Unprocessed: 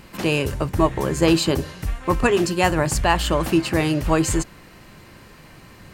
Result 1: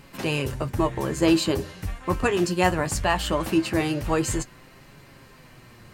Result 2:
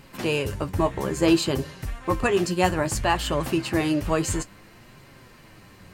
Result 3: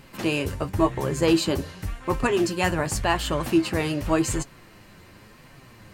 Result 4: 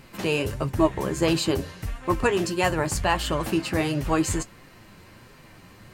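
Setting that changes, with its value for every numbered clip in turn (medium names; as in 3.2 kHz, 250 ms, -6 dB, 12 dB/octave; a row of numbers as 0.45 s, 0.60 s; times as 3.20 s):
flange, rate: 0.2 Hz, 0.59 Hz, 0.9 Hz, 1.5 Hz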